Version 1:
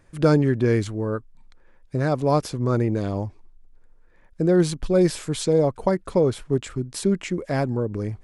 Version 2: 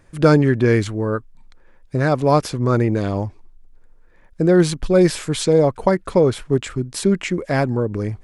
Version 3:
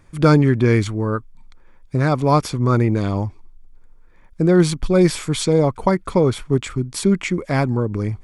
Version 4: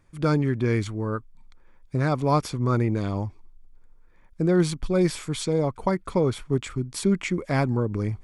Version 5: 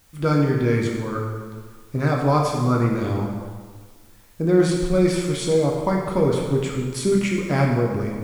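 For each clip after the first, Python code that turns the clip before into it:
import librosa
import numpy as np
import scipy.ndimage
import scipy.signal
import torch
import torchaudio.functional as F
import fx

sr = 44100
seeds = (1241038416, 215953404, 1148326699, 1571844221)

y1 = fx.dynamic_eq(x, sr, hz=1900.0, q=0.71, threshold_db=-40.0, ratio=4.0, max_db=4)
y1 = y1 * 10.0 ** (4.0 / 20.0)
y2 = y1 + 0.31 * np.pad(y1, (int(0.9 * sr / 1000.0), 0))[:len(y1)]
y3 = fx.rider(y2, sr, range_db=10, speed_s=2.0)
y3 = y3 * 10.0 ** (-7.5 / 20.0)
y4 = fx.quant_dither(y3, sr, seeds[0], bits=10, dither='triangular')
y4 = fx.rev_plate(y4, sr, seeds[1], rt60_s=1.6, hf_ratio=0.75, predelay_ms=0, drr_db=-1.5)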